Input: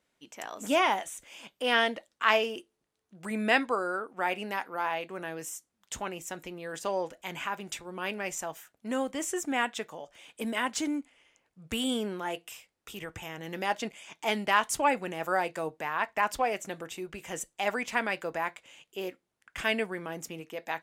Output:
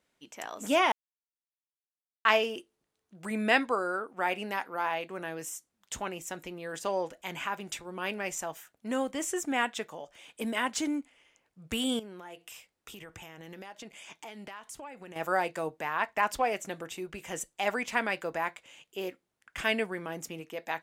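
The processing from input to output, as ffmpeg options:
ffmpeg -i in.wav -filter_complex "[0:a]asettb=1/sr,asplit=3[link_01][link_02][link_03];[link_01]atrim=end=11.994[link_04];[link_02]atrim=start=11.99:end=15.16,asetpts=PTS-STARTPTS,afade=type=in:duration=0.004:curve=qsin,afade=type=out:start_time=3.166:duration=0.004:curve=qsin,acompressor=threshold=-42dB:ratio=6:attack=3.2:release=140:knee=1:detection=peak[link_05];[link_03]atrim=start=15.156[link_06];[link_04][link_05]acrossfade=duration=0.004:curve1=hsin:curve2=qsin[link_07];[link_07][link_06]acrossfade=duration=0.004:curve1=qsin:curve2=hsin,asplit=3[link_08][link_09][link_10];[link_08]atrim=end=0.92,asetpts=PTS-STARTPTS,afade=type=out:start_time=0.916:duration=0.004:curve=hsin[link_11];[link_09]atrim=start=0.92:end=2.25,asetpts=PTS-STARTPTS,volume=0[link_12];[link_10]atrim=start=2.25,asetpts=PTS-STARTPTS,afade=type=in:duration=0.004:curve=hsin[link_13];[link_11][link_12][link_13]concat=n=3:v=0:a=1" out.wav

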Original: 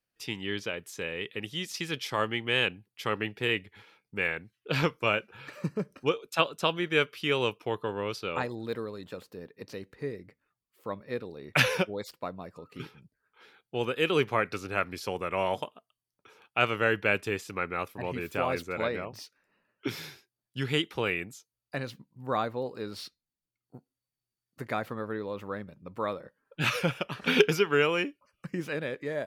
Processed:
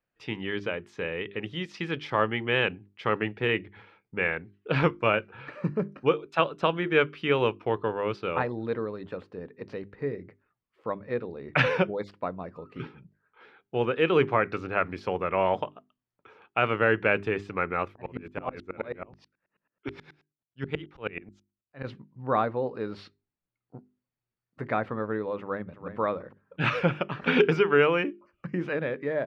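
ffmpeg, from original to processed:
ffmpeg -i in.wav -filter_complex "[0:a]asplit=3[link_01][link_02][link_03];[link_01]afade=type=out:start_time=17.93:duration=0.02[link_04];[link_02]aeval=exprs='val(0)*pow(10,-34*if(lt(mod(-9.3*n/s,1),2*abs(-9.3)/1000),1-mod(-9.3*n/s,1)/(2*abs(-9.3)/1000),(mod(-9.3*n/s,1)-2*abs(-9.3)/1000)/(1-2*abs(-9.3)/1000))/20)':channel_layout=same,afade=type=in:start_time=17.93:duration=0.02,afade=type=out:start_time=21.83:duration=0.02[link_05];[link_03]afade=type=in:start_time=21.83:duration=0.02[link_06];[link_04][link_05][link_06]amix=inputs=3:normalize=0,asplit=2[link_07][link_08];[link_08]afade=type=in:start_time=25.39:duration=0.01,afade=type=out:start_time=25.98:duration=0.01,aecho=0:1:340|680:0.316228|0.0474342[link_09];[link_07][link_09]amix=inputs=2:normalize=0,lowpass=2100,bandreject=frequency=50:width_type=h:width=6,bandreject=frequency=100:width_type=h:width=6,bandreject=frequency=150:width_type=h:width=6,bandreject=frequency=200:width_type=h:width=6,bandreject=frequency=250:width_type=h:width=6,bandreject=frequency=300:width_type=h:width=6,bandreject=frequency=350:width_type=h:width=6,bandreject=frequency=400:width_type=h:width=6,alimiter=level_in=12.5dB:limit=-1dB:release=50:level=0:latency=1,volume=-8dB" out.wav

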